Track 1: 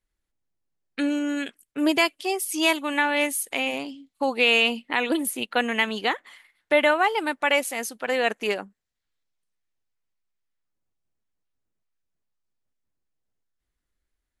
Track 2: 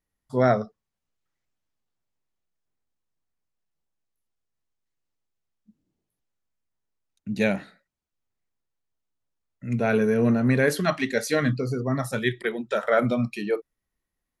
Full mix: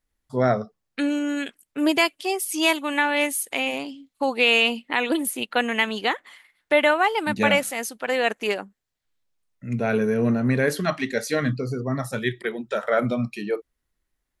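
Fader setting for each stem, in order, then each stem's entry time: +1.0 dB, -0.5 dB; 0.00 s, 0.00 s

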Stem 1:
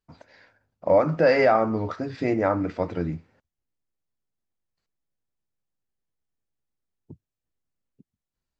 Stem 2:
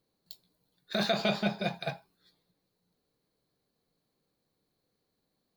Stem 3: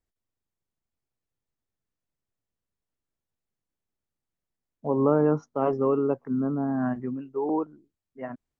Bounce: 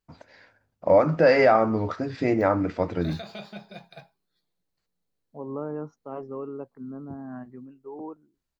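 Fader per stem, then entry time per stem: +1.0 dB, -11.0 dB, -11.5 dB; 0.00 s, 2.10 s, 0.50 s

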